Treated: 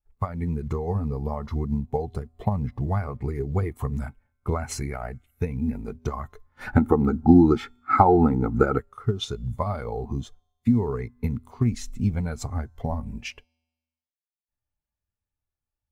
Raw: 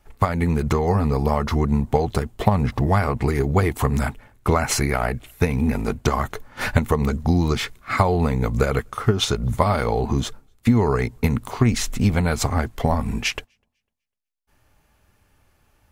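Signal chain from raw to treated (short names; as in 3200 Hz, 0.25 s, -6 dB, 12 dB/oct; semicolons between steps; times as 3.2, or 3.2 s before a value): high shelf 5600 Hz +5 dB; resonator 81 Hz, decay 1.9 s, harmonics odd, mix 40%; companded quantiser 6-bit; 6.67–8.78 small resonant body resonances 310/800/1300 Hz, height 13 dB, ringing for 20 ms; spectral expander 1.5:1; gain -1.5 dB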